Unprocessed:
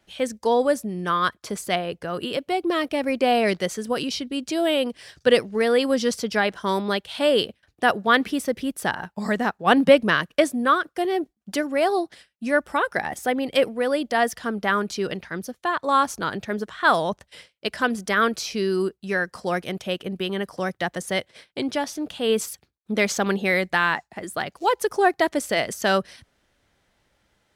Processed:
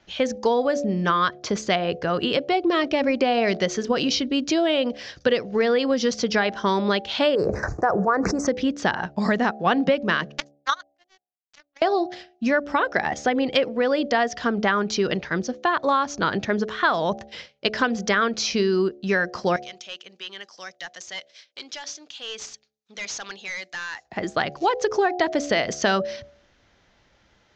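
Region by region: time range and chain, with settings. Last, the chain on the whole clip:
0:07.35–0:08.47: Chebyshev band-stop filter 1,200–7,700 Hz + parametric band 240 Hz −13.5 dB 0.26 octaves + level that may fall only so fast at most 43 dB per second
0:10.38–0:11.82: high-pass filter 920 Hz 24 dB per octave + power curve on the samples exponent 3
0:19.56–0:24.05: first difference + hard clipping −34 dBFS
whole clip: Butterworth low-pass 6,800 Hz 72 dB per octave; hum removal 71.97 Hz, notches 11; downward compressor 6 to 1, threshold −24 dBFS; level +6.5 dB

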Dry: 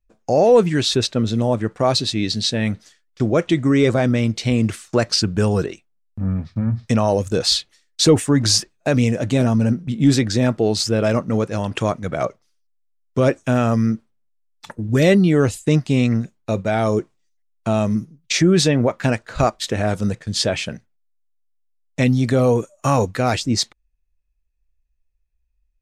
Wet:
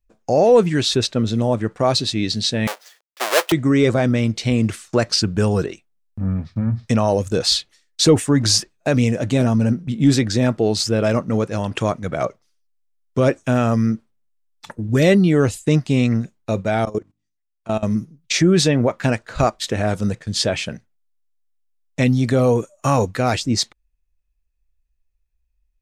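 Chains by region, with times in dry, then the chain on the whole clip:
0:02.67–0:03.52: each half-wave held at its own peak + high-pass filter 520 Hz 24 dB per octave
0:16.85–0:17.83: bass and treble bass −4 dB, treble −3 dB + mains-hum notches 50/100/150/200/250/300 Hz + output level in coarse steps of 19 dB
whole clip: no processing

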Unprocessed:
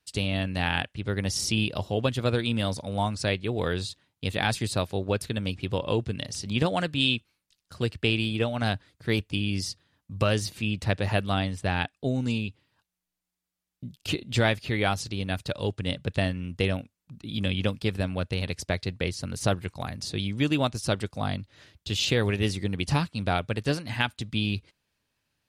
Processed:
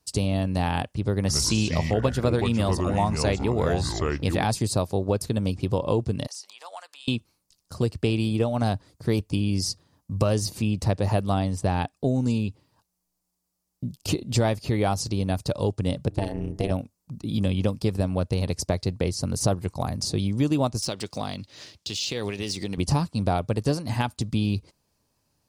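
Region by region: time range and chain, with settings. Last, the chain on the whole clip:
0:01.20–0:04.44: parametric band 1,900 Hz +6.5 dB 1.4 octaves + delay with pitch and tempo change per echo 88 ms, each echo −5 semitones, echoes 2, each echo −6 dB
0:06.27–0:07.08: high-pass filter 850 Hz 24 dB per octave + downward compressor 3 to 1, threshold −46 dBFS
0:16.08–0:16.71: de-essing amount 30% + hum removal 93.05 Hz, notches 22 + amplitude modulation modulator 210 Hz, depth 90%
0:20.82–0:22.78: running median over 3 samples + meter weighting curve D + downward compressor 2.5 to 1, threshold −34 dBFS
whole clip: flat-topped bell 2,300 Hz −11 dB; downward compressor 2 to 1, threshold −31 dBFS; level +8 dB

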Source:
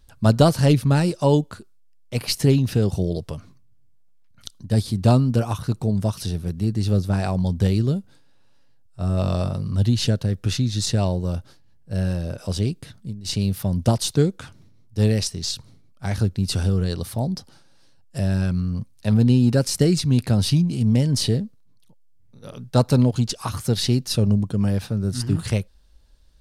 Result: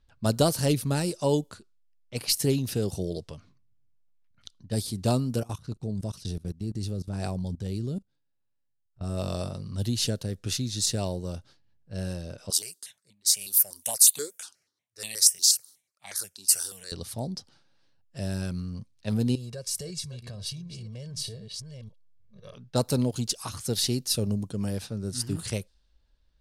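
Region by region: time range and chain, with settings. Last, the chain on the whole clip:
0:05.40–0:09.04: low-shelf EQ 350 Hz +7.5 dB + output level in coarse steps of 21 dB
0:12.50–0:16.92: high-pass filter 370 Hz 6 dB per octave + spectral tilt +4 dB per octave + step-sequenced phaser 8.3 Hz 560–1,500 Hz
0:19.35–0:22.55: delay that plays each chunk backwards 508 ms, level −13 dB + comb filter 1.8 ms, depth 96% + downward compressor 4 to 1, threshold −28 dBFS
whole clip: first-order pre-emphasis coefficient 0.8; low-pass that shuts in the quiet parts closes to 2,400 Hz, open at −29.5 dBFS; dynamic equaliser 420 Hz, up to +6 dB, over −46 dBFS, Q 0.74; level +2.5 dB

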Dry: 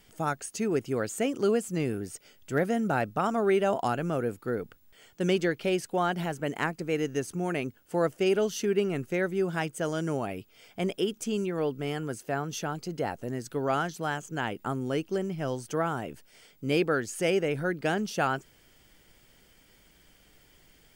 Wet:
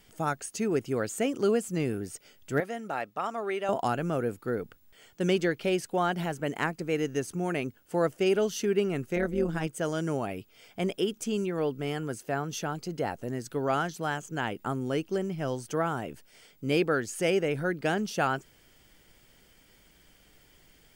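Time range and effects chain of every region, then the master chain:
0:02.60–0:03.69: high-pass filter 930 Hz 6 dB per octave + high-shelf EQ 4,700 Hz −8 dB + notch filter 1,500 Hz, Q 10
0:09.16–0:09.67: low-shelf EQ 360 Hz +6.5 dB + amplitude modulation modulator 150 Hz, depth 60%
whole clip: no processing

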